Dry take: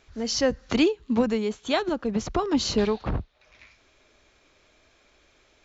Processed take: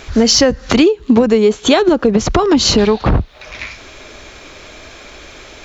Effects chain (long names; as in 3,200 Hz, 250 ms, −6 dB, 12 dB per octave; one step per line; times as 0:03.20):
0:00.80–0:02.18: parametric band 410 Hz +5.5 dB 0.85 octaves
downward compressor 10 to 1, threshold −32 dBFS, peak gain reduction 18.5 dB
soft clipping −20.5 dBFS, distortion −31 dB
boost into a limiter +26 dB
level −1 dB